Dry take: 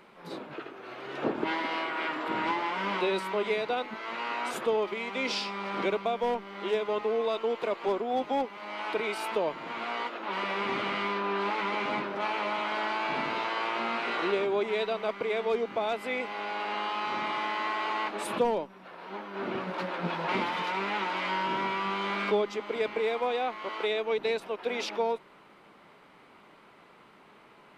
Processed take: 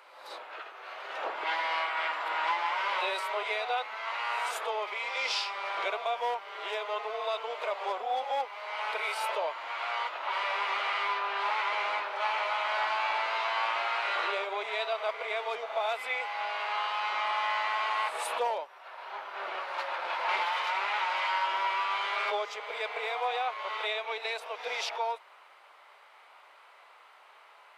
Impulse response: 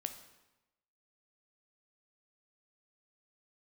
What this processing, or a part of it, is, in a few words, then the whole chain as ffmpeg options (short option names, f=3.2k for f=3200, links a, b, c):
ghost voice: -filter_complex "[0:a]areverse[a];[1:a]atrim=start_sample=2205[b];[a][b]afir=irnorm=-1:irlink=0,areverse,highpass=f=630:w=0.5412,highpass=f=630:w=1.3066,volume=3dB"